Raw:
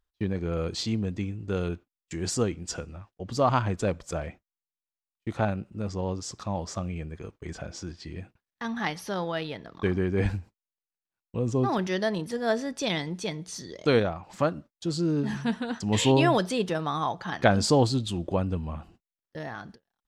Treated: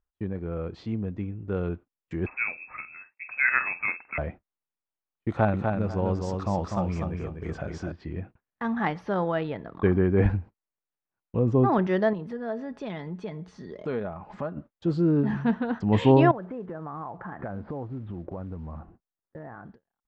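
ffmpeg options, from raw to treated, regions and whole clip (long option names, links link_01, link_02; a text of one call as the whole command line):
ffmpeg -i in.wav -filter_complex "[0:a]asettb=1/sr,asplit=3[link_01][link_02][link_03];[link_01]atrim=end=2.264[link_04];[link_02]atrim=start=2.26:end=4.18,asetpts=PTS-STARTPTS,afade=type=in:duration=0.004:curve=qsin,afade=type=out:start_time=1.916:duration=0.004:curve=qsin,asplit=2[link_05][link_06];[link_06]adelay=47,volume=-12dB[link_07];[link_05][link_07]amix=inputs=2:normalize=0,atrim=end_sample=84672,lowpass=frequency=2300:width_type=q:width=0.5098,lowpass=frequency=2300:width_type=q:width=0.6013,lowpass=frequency=2300:width_type=q:width=0.9,lowpass=frequency=2300:width_type=q:width=2.563,afreqshift=-2700[link_08];[link_03]atrim=start=4.176[link_09];[link_04][link_08]acrossfade=duration=0.004:curve1=hsin:curve2=qsin[link_10];[link_10][link_09]acrossfade=duration=0.004:curve1=qsin:curve2=hsin,asettb=1/sr,asplit=3[link_11][link_12][link_13];[link_11]atrim=end=5.294[link_14];[link_12]atrim=start=5.29:end=7.92,asetpts=PTS-STARTPTS,afade=type=in:duration=0.004:curve=qsin,afade=type=out:start_time=2.626:duration=0.004:curve=qsin,aemphasis=mode=production:type=75fm,aecho=1:1:248|496|744:0.596|0.143|0.0343,atrim=end_sample=115983[link_15];[link_13]atrim=start=7.916[link_16];[link_14][link_15]acrossfade=duration=0.004:curve1=hsin:curve2=qsin[link_17];[link_17][link_16]acrossfade=duration=0.004:curve1=qsin:curve2=hsin,asettb=1/sr,asplit=3[link_18][link_19][link_20];[link_18]atrim=end=12.134[link_21];[link_19]atrim=start=12.13:end=14.57,asetpts=PTS-STARTPTS,afade=type=in:duration=0.004:curve=qsin,afade=type=out:start_time=2.436:duration=0.004:curve=qsin,aecho=1:1:4.8:0.35,atrim=end_sample=107604,acompressor=threshold=-41dB:ratio=2:attack=3.2:release=140:knee=1:detection=peak[link_22];[link_20]atrim=start=14.566[link_23];[link_21][link_22]acrossfade=duration=0.004:curve1=hsin:curve2=qsin[link_24];[link_24][link_23]acrossfade=duration=0.004:curve1=qsin:curve2=hsin,asettb=1/sr,asplit=3[link_25][link_26][link_27];[link_25]atrim=end=16.314[link_28];[link_26]atrim=start=16.31:end=19.65,asetpts=PTS-STARTPTS,afade=type=in:duration=0.004:curve=qsin,afade=type=out:start_time=3.336:duration=0.004:curve=qsin,lowpass=frequency=1900:width=0.5412,lowpass=frequency=1900:width=1.3066,acrusher=bits=6:mode=log:mix=0:aa=0.000001,acompressor=threshold=-37dB:ratio=5:attack=3.2:release=140:knee=1:detection=peak[link_29];[link_27]atrim=start=19.646[link_30];[link_28][link_29]acrossfade=duration=0.004:curve1=hsin:curve2=qsin[link_31];[link_31][link_30]acrossfade=duration=0.004:curve1=qsin:curve2=hsin,lowpass=1600,dynaudnorm=framelen=730:gausssize=5:maxgain=7.5dB,volume=-3dB" out.wav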